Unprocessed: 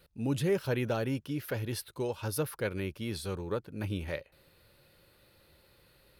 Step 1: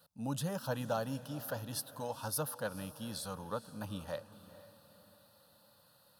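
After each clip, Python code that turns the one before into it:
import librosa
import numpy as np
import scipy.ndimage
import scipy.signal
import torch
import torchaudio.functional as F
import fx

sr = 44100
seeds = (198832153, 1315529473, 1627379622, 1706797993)

y = scipy.signal.sosfilt(scipy.signal.butter(2, 190.0, 'highpass', fs=sr, output='sos'), x)
y = fx.fixed_phaser(y, sr, hz=910.0, stages=4)
y = fx.echo_diffused(y, sr, ms=460, feedback_pct=44, wet_db=-15.5)
y = F.gain(torch.from_numpy(y), 2.0).numpy()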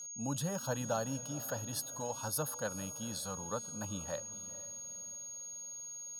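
y = x + 10.0 ** (-43.0 / 20.0) * np.sin(2.0 * np.pi * 6600.0 * np.arange(len(x)) / sr)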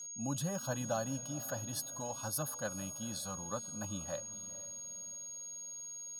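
y = fx.notch_comb(x, sr, f0_hz=460.0)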